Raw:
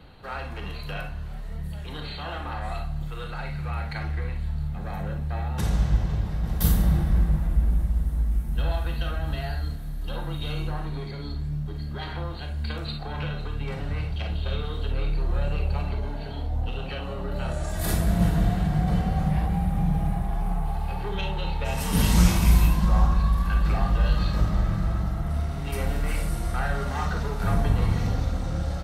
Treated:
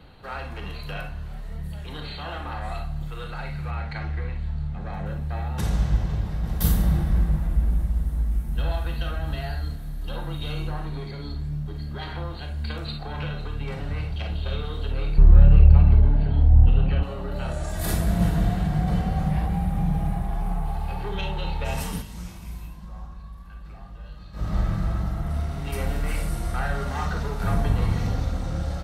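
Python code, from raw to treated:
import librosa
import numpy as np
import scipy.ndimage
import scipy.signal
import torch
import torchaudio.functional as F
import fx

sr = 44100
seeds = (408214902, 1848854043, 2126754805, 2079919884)

y = fx.air_absorb(x, sr, metres=66.0, at=(3.71, 5.06))
y = fx.bass_treble(y, sr, bass_db=14, treble_db=-14, at=(15.18, 17.03))
y = fx.edit(y, sr, fx.fade_down_up(start_s=21.79, length_s=2.78, db=-19.0, fade_s=0.25), tone=tone)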